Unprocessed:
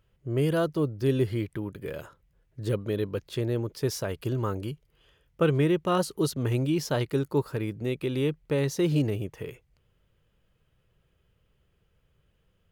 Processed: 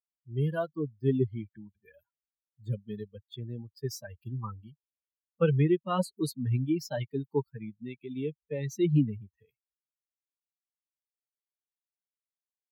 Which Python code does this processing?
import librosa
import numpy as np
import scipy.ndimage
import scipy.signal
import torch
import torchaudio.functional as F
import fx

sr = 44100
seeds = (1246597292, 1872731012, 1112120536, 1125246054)

y = fx.bin_expand(x, sr, power=3.0)
y = scipy.signal.sosfilt(scipy.signal.butter(4, 120.0, 'highpass', fs=sr, output='sos'), y)
y = fx.low_shelf(y, sr, hz=390.0, db=8.0)
y = F.gain(torch.from_numpy(y), -1.0).numpy()